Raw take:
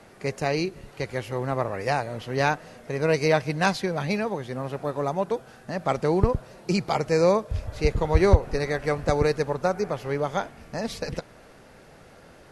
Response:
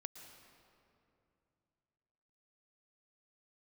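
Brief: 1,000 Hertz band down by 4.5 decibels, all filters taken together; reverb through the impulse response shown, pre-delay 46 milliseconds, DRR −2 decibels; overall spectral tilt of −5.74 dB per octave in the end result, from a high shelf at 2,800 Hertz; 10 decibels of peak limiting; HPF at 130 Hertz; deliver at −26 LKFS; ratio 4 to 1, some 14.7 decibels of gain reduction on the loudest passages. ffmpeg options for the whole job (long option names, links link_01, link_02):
-filter_complex "[0:a]highpass=130,equalizer=frequency=1000:width_type=o:gain=-5.5,highshelf=frequency=2800:gain=-6,acompressor=threshold=-35dB:ratio=4,alimiter=level_in=7.5dB:limit=-24dB:level=0:latency=1,volume=-7.5dB,asplit=2[link_01][link_02];[1:a]atrim=start_sample=2205,adelay=46[link_03];[link_02][link_03]afir=irnorm=-1:irlink=0,volume=6dB[link_04];[link_01][link_04]amix=inputs=2:normalize=0,volume=12.5dB"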